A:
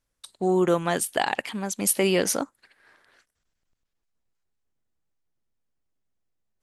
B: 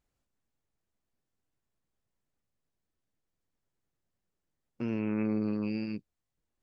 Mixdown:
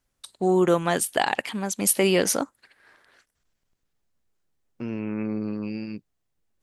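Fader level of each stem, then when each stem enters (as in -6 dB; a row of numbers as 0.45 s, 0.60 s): +1.5 dB, +1.5 dB; 0.00 s, 0.00 s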